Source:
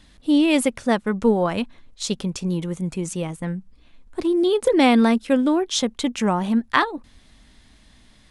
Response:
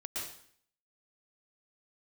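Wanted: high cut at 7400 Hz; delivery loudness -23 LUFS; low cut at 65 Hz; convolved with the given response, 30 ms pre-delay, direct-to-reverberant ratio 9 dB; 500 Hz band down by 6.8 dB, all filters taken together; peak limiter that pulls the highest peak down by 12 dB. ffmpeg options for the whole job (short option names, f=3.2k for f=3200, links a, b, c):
-filter_complex "[0:a]highpass=65,lowpass=7.4k,equalizer=f=500:t=o:g=-9,alimiter=limit=-14dB:level=0:latency=1,asplit=2[a][b];[1:a]atrim=start_sample=2205,adelay=30[c];[b][c]afir=irnorm=-1:irlink=0,volume=-10dB[d];[a][d]amix=inputs=2:normalize=0,volume=2dB"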